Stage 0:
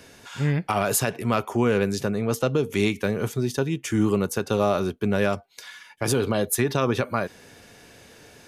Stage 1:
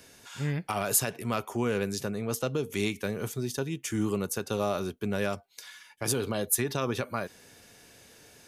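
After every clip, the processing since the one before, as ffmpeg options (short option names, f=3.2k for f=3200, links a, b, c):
-af "highshelf=f=4.7k:g=8.5,volume=-7.5dB"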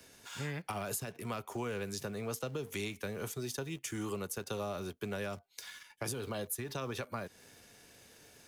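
-filter_complex "[0:a]acrossover=split=140|410[a][b][c];[a]acompressor=threshold=-46dB:ratio=4[d];[b]acompressor=threshold=-46dB:ratio=4[e];[c]acompressor=threshold=-38dB:ratio=4[f];[d][e][f]amix=inputs=3:normalize=0,asplit=2[g][h];[h]aeval=exprs='val(0)*gte(abs(val(0)),0.00473)':c=same,volume=-4.5dB[i];[g][i]amix=inputs=2:normalize=0,volume=-4.5dB"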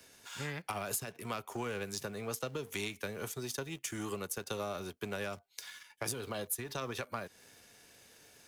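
-af "aeval=exprs='0.075*(cos(1*acos(clip(val(0)/0.075,-1,1)))-cos(1*PI/2))+0.00335*(cos(7*acos(clip(val(0)/0.075,-1,1)))-cos(7*PI/2))':c=same,lowshelf=f=490:g=-4.5,volume=3dB"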